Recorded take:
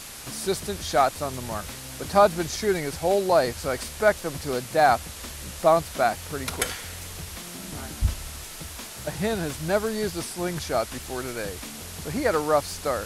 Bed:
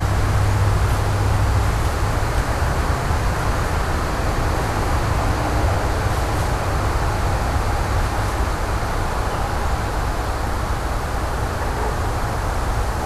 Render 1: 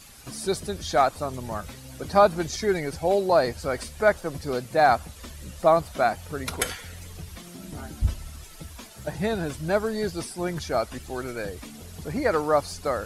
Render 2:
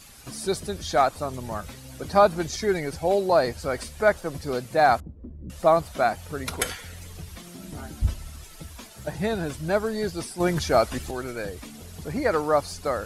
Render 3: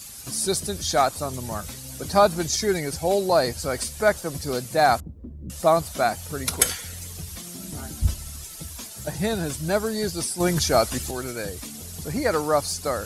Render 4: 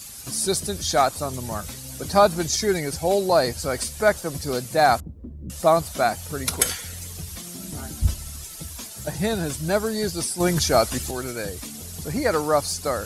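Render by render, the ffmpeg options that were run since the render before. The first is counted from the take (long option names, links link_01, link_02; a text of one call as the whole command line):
ffmpeg -i in.wav -af "afftdn=noise_reduction=11:noise_floor=-39" out.wav
ffmpeg -i in.wav -filter_complex "[0:a]asettb=1/sr,asplit=3[link_01][link_02][link_03];[link_01]atrim=end=5.004[link_04];[link_02]atrim=start=5:end=5.5,asetpts=PTS-STARTPTS,afade=type=in:duration=0.004:curve=qsin,afade=type=out:start_time=0.496:duration=0.004:curve=qsin,lowpass=frequency=300:width_type=q:width=1.8[link_05];[link_03]atrim=start=5.496[link_06];[link_04][link_05]acrossfade=duration=0.004:curve1=hsin:curve2=qsin[link_07];[link_07][link_06]acrossfade=duration=0.004:curve1=qsin:curve2=hsin,asettb=1/sr,asplit=3[link_08][link_09][link_10];[link_08]atrim=end=10.404[link_11];[link_09]atrim=start=10.4:end=11.11,asetpts=PTS-STARTPTS,afade=type=in:duration=0.004:curve=qsin,afade=type=out:start_time=0.706:duration=0.004:curve=qsin,acontrast=44[link_12];[link_10]atrim=start=11.106[link_13];[link_11][link_12]acrossfade=duration=0.004:curve1=hsin:curve2=qsin[link_14];[link_14][link_13]acrossfade=duration=0.004:curve1=qsin:curve2=hsin" out.wav
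ffmpeg -i in.wav -af "highpass=48,bass=frequency=250:gain=3,treble=frequency=4000:gain=11" out.wav
ffmpeg -i in.wav -af "volume=1dB,alimiter=limit=-3dB:level=0:latency=1" out.wav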